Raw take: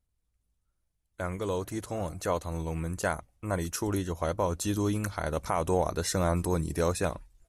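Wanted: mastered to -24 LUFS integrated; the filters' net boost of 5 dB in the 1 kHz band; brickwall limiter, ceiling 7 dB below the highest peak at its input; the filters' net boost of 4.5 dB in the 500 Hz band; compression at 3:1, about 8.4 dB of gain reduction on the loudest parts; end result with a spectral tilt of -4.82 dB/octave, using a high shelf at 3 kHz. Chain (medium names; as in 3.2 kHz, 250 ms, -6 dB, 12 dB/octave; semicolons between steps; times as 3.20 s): peaking EQ 500 Hz +4 dB; peaking EQ 1 kHz +4.5 dB; treble shelf 3 kHz +4.5 dB; compression 3:1, threshold -30 dBFS; trim +10.5 dB; peak limiter -11.5 dBFS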